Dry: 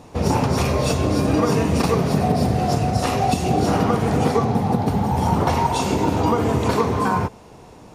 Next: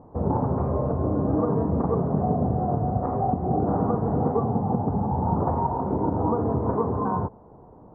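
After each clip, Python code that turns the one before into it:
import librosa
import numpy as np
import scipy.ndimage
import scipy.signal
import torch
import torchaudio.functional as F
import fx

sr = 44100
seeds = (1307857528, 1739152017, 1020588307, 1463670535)

y = scipy.signal.sosfilt(scipy.signal.cheby2(4, 50, 2800.0, 'lowpass', fs=sr, output='sos'), x)
y = F.gain(torch.from_numpy(y), -4.5).numpy()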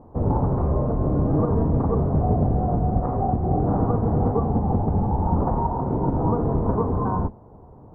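y = fx.octave_divider(x, sr, octaves=1, level_db=2.0)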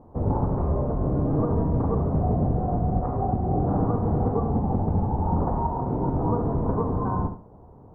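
y = fx.echo_feedback(x, sr, ms=70, feedback_pct=30, wet_db=-9)
y = F.gain(torch.from_numpy(y), -3.0).numpy()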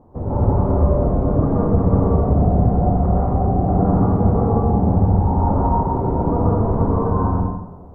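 y = fx.rev_plate(x, sr, seeds[0], rt60_s=0.93, hf_ratio=0.8, predelay_ms=110, drr_db=-5.5)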